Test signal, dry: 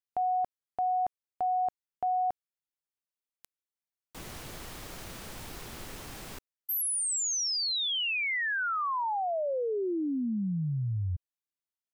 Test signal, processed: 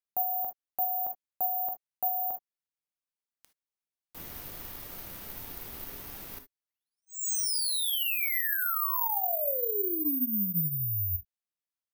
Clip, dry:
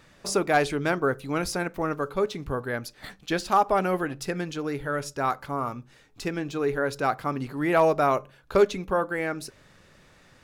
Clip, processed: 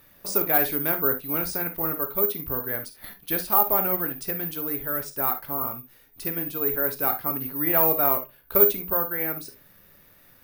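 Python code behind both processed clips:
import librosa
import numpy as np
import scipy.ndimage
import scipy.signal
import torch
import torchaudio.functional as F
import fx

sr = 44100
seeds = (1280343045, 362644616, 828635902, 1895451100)

y = fx.rev_gated(x, sr, seeds[0], gate_ms=90, shape='flat', drr_db=7.0)
y = (np.kron(scipy.signal.resample_poly(y, 1, 3), np.eye(3)[0]) * 3)[:len(y)]
y = F.gain(torch.from_numpy(y), -4.5).numpy()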